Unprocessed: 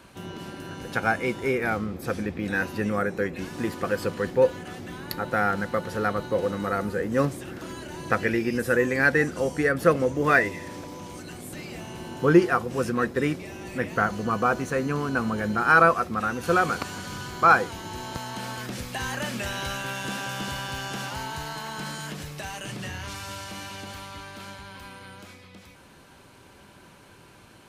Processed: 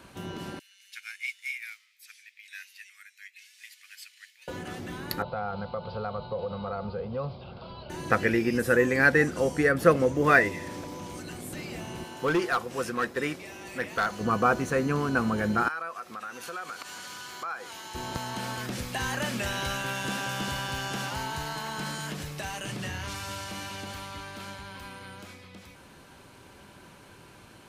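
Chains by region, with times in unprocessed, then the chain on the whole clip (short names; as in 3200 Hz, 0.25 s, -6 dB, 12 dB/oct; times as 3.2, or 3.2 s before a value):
0.59–4.48 Chebyshev high-pass 2100 Hz, order 4 + upward expander, over -48 dBFS
5.22–7.9 steep low-pass 4800 Hz 96 dB/oct + fixed phaser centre 750 Hz, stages 4 + compressor 3:1, threshold -29 dBFS
12.04–14.21 low shelf 380 Hz -11.5 dB + hard clip -20.5 dBFS
15.68–17.95 HPF 1200 Hz 6 dB/oct + compressor 3:1, threshold -37 dBFS
whole clip: dry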